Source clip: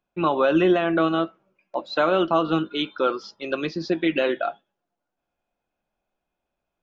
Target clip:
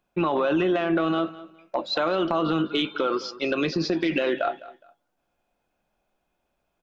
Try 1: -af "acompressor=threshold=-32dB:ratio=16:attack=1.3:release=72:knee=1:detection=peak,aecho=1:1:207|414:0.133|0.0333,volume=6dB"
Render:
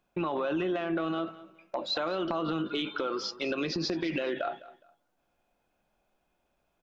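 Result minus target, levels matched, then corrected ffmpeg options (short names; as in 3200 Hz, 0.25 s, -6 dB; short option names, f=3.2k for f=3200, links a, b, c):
compressor: peak gain reduction +7.5 dB
-af "acompressor=threshold=-24dB:ratio=16:attack=1.3:release=72:knee=1:detection=peak,aecho=1:1:207|414:0.133|0.0333,volume=6dB"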